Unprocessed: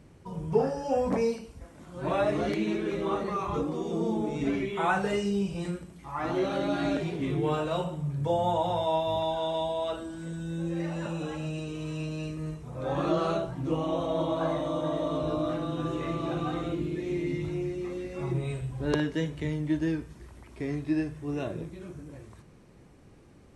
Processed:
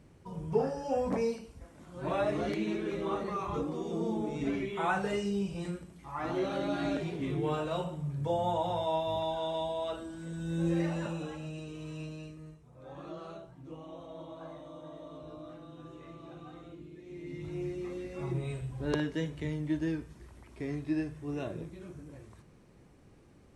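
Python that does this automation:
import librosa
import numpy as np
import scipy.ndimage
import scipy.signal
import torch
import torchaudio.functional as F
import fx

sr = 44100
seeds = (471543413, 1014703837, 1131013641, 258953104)

y = fx.gain(x, sr, db=fx.line((10.28, -4.0), (10.7, 3.0), (11.4, -7.0), (12.05, -7.0), (12.68, -17.0), (17.04, -17.0), (17.64, -4.0)))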